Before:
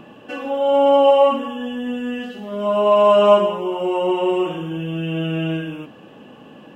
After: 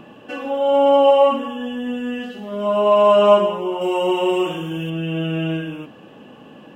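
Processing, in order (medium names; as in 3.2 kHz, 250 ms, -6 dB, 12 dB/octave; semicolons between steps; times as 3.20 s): 3.81–4.90 s: treble shelf 3.4 kHz +10.5 dB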